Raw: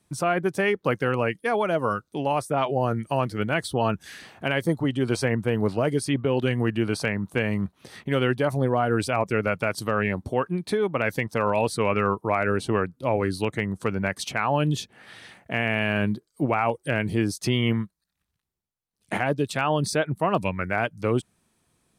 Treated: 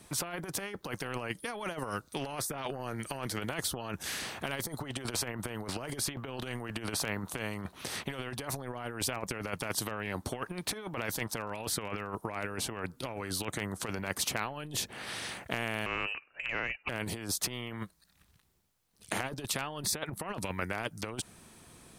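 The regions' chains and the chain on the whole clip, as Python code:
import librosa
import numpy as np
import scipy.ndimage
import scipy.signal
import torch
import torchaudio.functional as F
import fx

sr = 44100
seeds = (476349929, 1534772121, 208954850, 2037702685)

y = fx.chain(x, sr, fx.freq_invert(carrier_hz=2800),
    fx.band_squash(depth_pct=100), at=(15.86, 16.89))
y = fx.dynamic_eq(y, sr, hz=2700.0, q=0.92, threshold_db=-40.0, ratio=4.0, max_db=-5)
y = fx.over_compress(y, sr, threshold_db=-28.0, ratio=-0.5)
y = fx.spectral_comp(y, sr, ratio=2.0)
y = y * 10.0 ** (-6.0 / 20.0)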